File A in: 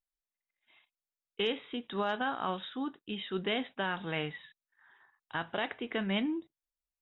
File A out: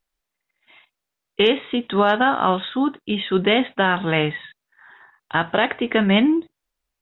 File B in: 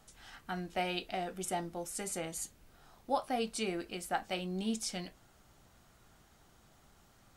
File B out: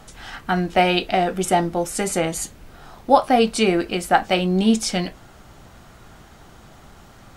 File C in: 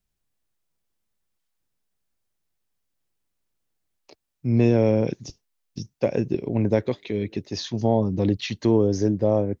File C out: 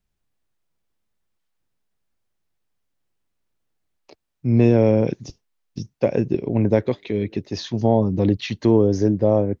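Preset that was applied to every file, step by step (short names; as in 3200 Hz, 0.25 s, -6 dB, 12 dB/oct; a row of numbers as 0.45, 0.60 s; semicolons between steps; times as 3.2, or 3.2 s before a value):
high shelf 4600 Hz -8 dB; match loudness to -20 LUFS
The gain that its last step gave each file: +15.5, +18.0, +3.5 dB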